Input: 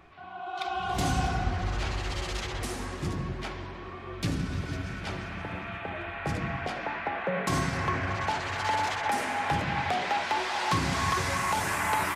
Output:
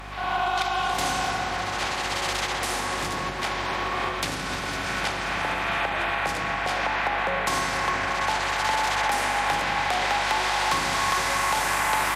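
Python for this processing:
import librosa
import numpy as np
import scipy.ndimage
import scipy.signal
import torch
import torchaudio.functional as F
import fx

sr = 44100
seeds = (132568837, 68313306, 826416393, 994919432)

y = fx.bin_compress(x, sr, power=0.6)
y = fx.recorder_agc(y, sr, target_db=-16.5, rise_db_per_s=27.0, max_gain_db=30)
y = fx.highpass(y, sr, hz=760.0, slope=6)
y = fx.add_hum(y, sr, base_hz=50, snr_db=16)
y = F.gain(torch.from_numpy(y), 3.0).numpy()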